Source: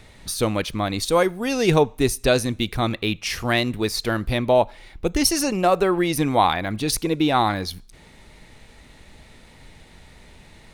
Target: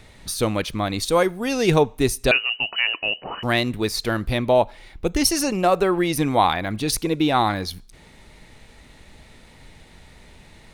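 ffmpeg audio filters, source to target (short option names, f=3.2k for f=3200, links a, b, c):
-filter_complex "[0:a]asettb=1/sr,asplit=3[a][b][c];[a]atrim=end=2.314[d];[b]atrim=start=2.31:end=3.43,asetpts=PTS-STARTPTS,afade=t=in:d=0.004:c=qsin,afade=t=out:st=1.116:d=0.004:c=qsin,lowpass=f=2.6k:t=q:w=0.5098,lowpass=f=2.6k:t=q:w=0.6013,lowpass=f=2.6k:t=q:w=0.9,lowpass=f=2.6k:t=q:w=2.563,afreqshift=-3000[e];[c]atrim=start=3.426[f];[d][e]acrossfade=d=0.004:c1=hsin:c2=qsin[g];[g][f]acrossfade=d=0.004:c1=qsin:c2=hsin"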